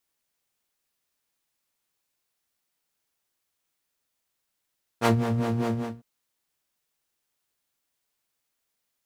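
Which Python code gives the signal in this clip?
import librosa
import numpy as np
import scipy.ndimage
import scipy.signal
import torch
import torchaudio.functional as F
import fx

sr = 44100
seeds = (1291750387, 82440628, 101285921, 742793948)

y = fx.sub_patch_wobble(sr, seeds[0], note=58, wave='saw', wave2='square', interval_st=-12, level2_db=-6.5, sub_db=-15.0, noise_db=-1.5, kind='bandpass', cutoff_hz=170.0, q=0.7, env_oct=1.5, env_decay_s=0.18, env_sustain_pct=30, attack_ms=48.0, decay_s=0.1, sustain_db=-9, release_s=0.29, note_s=0.72, lfo_hz=5.0, wobble_oct=1.4)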